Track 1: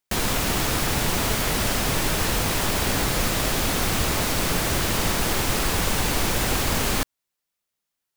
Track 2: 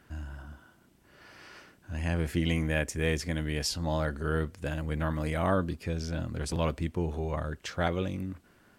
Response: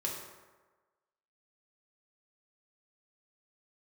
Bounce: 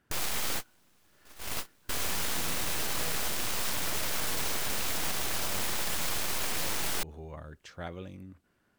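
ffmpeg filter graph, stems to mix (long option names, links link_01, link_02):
-filter_complex "[0:a]highpass=170,aeval=exprs='abs(val(0))':channel_layout=same,volume=2.5dB[link_01];[1:a]volume=-11dB,asplit=2[link_02][link_03];[link_03]apad=whole_len=360122[link_04];[link_01][link_04]sidechaingate=range=-42dB:threshold=-59dB:ratio=16:detection=peak[link_05];[link_05][link_02]amix=inputs=2:normalize=0,alimiter=limit=-19.5dB:level=0:latency=1:release=75"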